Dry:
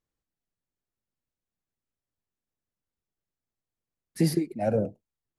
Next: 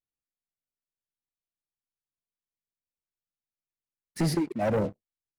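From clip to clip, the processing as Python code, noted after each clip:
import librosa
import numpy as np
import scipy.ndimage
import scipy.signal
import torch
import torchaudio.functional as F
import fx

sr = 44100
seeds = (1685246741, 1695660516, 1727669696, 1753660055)

y = scipy.signal.sosfilt(scipy.signal.butter(2, 9300.0, 'lowpass', fs=sr, output='sos'), x)
y = fx.leveller(y, sr, passes=3)
y = F.gain(torch.from_numpy(y), -7.5).numpy()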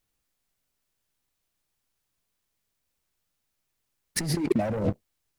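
y = fx.low_shelf(x, sr, hz=87.0, db=6.5)
y = fx.over_compress(y, sr, threshold_db=-34.0, ratio=-1.0)
y = F.gain(torch.from_numpy(y), 7.5).numpy()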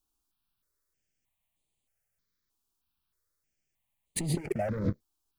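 y = fx.phaser_held(x, sr, hz=3.2, low_hz=540.0, high_hz=5400.0)
y = F.gain(torch.from_numpy(y), -1.5).numpy()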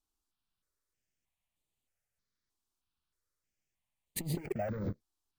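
y = np.repeat(scipy.signal.resample_poly(x, 1, 2), 2)[:len(x)]
y = fx.transformer_sat(y, sr, knee_hz=170.0)
y = F.gain(torch.from_numpy(y), -4.0).numpy()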